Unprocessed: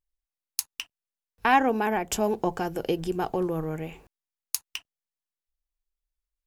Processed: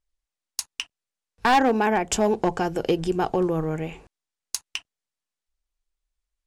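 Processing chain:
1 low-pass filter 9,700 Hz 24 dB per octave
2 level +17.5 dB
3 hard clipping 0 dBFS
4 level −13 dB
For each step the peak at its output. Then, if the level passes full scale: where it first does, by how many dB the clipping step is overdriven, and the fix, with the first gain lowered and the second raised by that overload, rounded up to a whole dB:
−8.0, +9.5, 0.0, −13.0 dBFS
step 2, 9.5 dB
step 2 +7.5 dB, step 4 −3 dB

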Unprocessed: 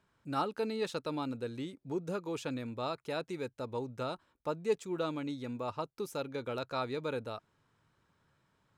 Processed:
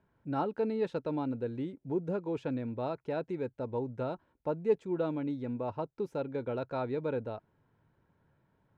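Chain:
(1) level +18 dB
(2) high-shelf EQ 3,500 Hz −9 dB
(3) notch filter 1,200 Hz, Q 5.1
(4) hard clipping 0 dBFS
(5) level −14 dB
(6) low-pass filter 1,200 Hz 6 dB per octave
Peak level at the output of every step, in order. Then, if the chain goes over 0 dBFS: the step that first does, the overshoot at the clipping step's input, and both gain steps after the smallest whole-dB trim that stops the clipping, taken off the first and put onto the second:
−2.0, −2.5, −2.5, −2.5, −16.5, −17.0 dBFS
no step passes full scale

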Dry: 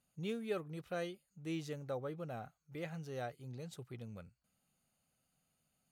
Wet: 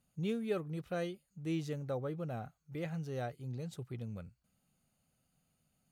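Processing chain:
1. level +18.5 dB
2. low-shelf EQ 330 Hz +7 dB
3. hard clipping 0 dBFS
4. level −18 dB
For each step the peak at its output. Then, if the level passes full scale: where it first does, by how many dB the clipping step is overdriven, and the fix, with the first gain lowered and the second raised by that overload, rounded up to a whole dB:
−8.0, −5.5, −5.5, −23.5 dBFS
no step passes full scale

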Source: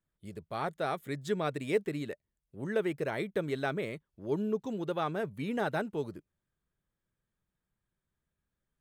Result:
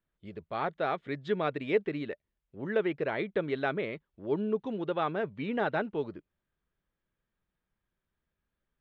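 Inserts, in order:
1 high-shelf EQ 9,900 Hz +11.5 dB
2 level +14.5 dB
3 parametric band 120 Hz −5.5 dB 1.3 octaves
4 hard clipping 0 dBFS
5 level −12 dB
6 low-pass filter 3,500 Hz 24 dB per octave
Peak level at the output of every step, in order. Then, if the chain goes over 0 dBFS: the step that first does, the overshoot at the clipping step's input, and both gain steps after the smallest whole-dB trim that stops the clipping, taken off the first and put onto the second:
−18.5, −4.0, −3.5, −3.5, −15.5, −16.0 dBFS
no step passes full scale

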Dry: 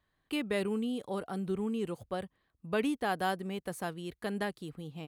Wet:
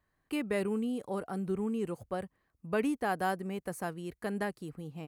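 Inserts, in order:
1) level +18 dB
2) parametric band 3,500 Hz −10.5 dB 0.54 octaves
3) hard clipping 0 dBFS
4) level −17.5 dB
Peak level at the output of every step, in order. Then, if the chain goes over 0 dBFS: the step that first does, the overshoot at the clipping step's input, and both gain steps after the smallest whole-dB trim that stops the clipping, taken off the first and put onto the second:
−2.0, −2.0, −2.0, −19.5 dBFS
no step passes full scale

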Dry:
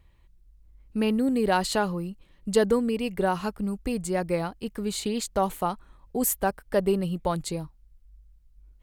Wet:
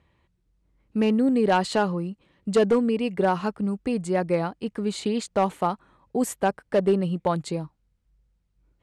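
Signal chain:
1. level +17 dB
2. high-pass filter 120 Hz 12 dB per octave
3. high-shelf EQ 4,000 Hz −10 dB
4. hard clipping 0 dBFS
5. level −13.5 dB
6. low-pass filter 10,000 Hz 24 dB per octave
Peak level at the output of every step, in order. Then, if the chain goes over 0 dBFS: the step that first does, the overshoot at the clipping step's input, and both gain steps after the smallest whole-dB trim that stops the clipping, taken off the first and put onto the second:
+8.0, +7.5, +7.0, 0.0, −13.5, −13.0 dBFS
step 1, 7.0 dB
step 1 +10 dB, step 5 −6.5 dB

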